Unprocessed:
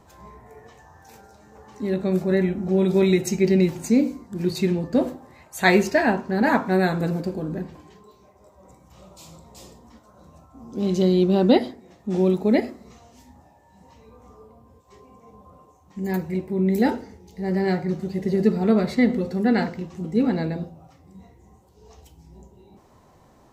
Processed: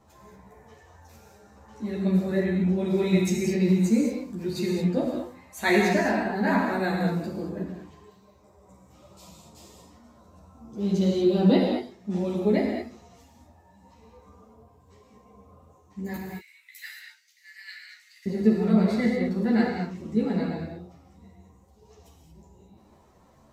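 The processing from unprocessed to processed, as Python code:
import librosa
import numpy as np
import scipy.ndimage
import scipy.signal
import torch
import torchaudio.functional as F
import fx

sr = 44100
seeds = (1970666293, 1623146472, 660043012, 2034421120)

y = fx.steep_highpass(x, sr, hz=1800.0, slope=36, at=(16.16, 18.26))
y = fx.rev_gated(y, sr, seeds[0], gate_ms=250, shape='flat', drr_db=-0.5)
y = fx.ensemble(y, sr)
y = y * 10.0 ** (-3.5 / 20.0)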